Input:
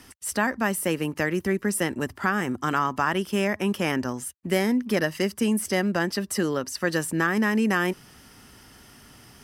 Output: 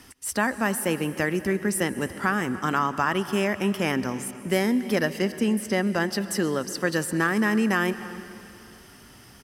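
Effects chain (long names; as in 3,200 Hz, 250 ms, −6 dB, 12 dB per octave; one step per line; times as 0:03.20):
0:05.19–0:05.85: high-shelf EQ 5,100 Hz −7 dB
slap from a distant wall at 51 metres, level −18 dB
convolution reverb RT60 2.8 s, pre-delay 118 ms, DRR 14 dB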